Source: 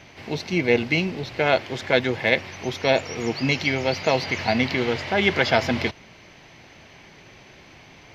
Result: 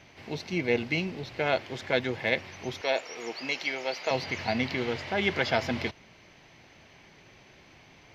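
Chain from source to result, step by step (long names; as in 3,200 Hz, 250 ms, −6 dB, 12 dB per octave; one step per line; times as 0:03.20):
0:02.81–0:04.11: high-pass filter 430 Hz 12 dB per octave
level −7 dB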